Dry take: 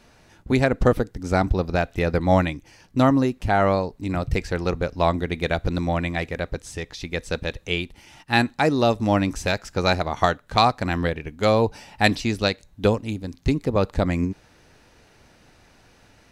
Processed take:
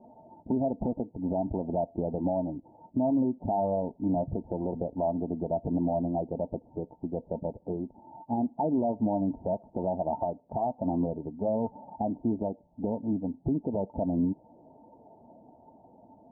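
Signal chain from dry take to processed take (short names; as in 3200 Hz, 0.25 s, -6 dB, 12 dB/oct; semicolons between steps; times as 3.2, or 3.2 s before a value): bin magnitudes rounded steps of 15 dB; HPF 310 Hz 6 dB/oct; compressor, threshold -25 dBFS, peak gain reduction 11.5 dB; rippled Chebyshev low-pass 930 Hz, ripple 9 dB; limiter -27.5 dBFS, peak gain reduction 7.5 dB; mismatched tape noise reduction encoder only; gain +8 dB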